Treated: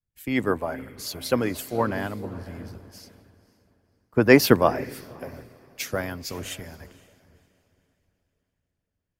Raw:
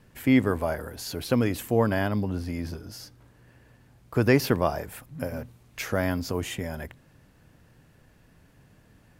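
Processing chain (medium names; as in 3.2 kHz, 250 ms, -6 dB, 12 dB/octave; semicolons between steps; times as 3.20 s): echo that smears into a reverb 527 ms, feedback 55%, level -9.5 dB; harmonic-percussive split percussive +9 dB; three bands expanded up and down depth 100%; trim -9 dB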